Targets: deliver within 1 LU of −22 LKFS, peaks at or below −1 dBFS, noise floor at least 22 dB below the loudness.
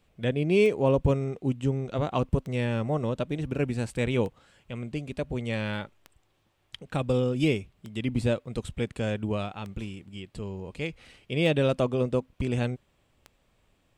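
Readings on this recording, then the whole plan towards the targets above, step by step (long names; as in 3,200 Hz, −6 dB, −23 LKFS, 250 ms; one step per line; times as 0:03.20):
number of clicks 8; integrated loudness −28.5 LKFS; sample peak −11.5 dBFS; target loudness −22.0 LKFS
→ click removal
level +6.5 dB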